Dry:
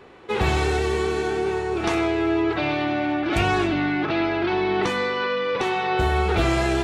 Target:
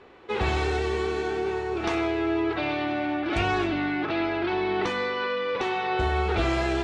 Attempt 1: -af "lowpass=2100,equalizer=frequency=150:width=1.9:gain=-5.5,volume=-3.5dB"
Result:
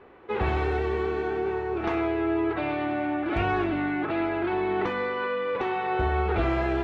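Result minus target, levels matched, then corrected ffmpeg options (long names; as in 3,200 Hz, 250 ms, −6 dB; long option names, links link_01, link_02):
8,000 Hz band −16.0 dB
-af "lowpass=6000,equalizer=frequency=150:width=1.9:gain=-5.5,volume=-3.5dB"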